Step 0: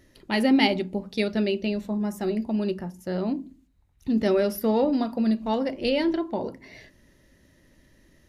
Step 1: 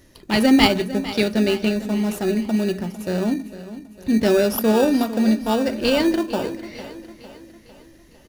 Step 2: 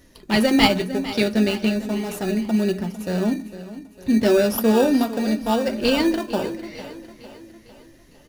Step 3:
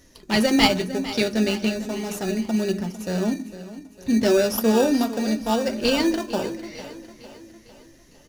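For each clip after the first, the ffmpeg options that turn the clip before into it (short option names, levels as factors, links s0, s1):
-filter_complex "[0:a]highshelf=f=3000:g=8,asplit=2[s0][s1];[s1]acrusher=samples=21:mix=1:aa=0.000001,volume=0.562[s2];[s0][s2]amix=inputs=2:normalize=0,aecho=1:1:453|906|1359|1812|2265:0.188|0.0961|0.049|0.025|0.0127,volume=1.19"
-af "flanger=delay=4:depth=5.1:regen=-46:speed=0.33:shape=triangular,volume=1.5"
-af "equalizer=f=6100:w=2:g=7,bandreject=f=51.4:t=h:w=4,bandreject=f=102.8:t=h:w=4,bandreject=f=154.2:t=h:w=4,bandreject=f=205.6:t=h:w=4,bandreject=f=257:t=h:w=4,bandreject=f=308.4:t=h:w=4,bandreject=f=359.8:t=h:w=4,volume=0.841"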